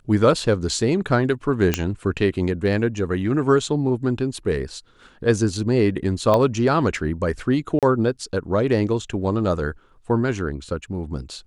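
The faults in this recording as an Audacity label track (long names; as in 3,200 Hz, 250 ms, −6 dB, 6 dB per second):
1.740000	1.740000	click −4 dBFS
6.340000	6.340000	click −8 dBFS
7.790000	7.830000	drop-out 37 ms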